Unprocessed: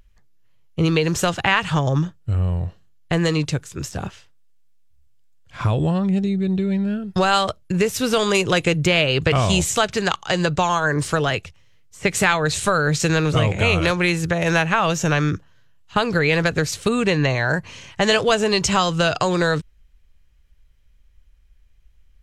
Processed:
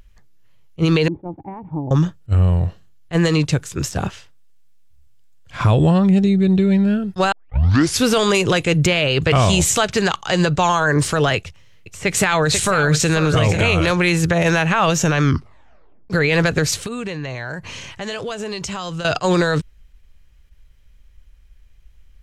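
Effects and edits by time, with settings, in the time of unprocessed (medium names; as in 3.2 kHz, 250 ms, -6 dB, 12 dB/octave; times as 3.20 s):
1.08–1.91 s: cascade formant filter u
7.32 s: tape start 0.71 s
11.37–13.69 s: delay 491 ms -12.5 dB
15.22 s: tape stop 0.88 s
16.81–19.05 s: compression 8:1, threshold -30 dBFS
whole clip: loudness maximiser +12 dB; attacks held to a fixed rise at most 490 dB/s; trim -6 dB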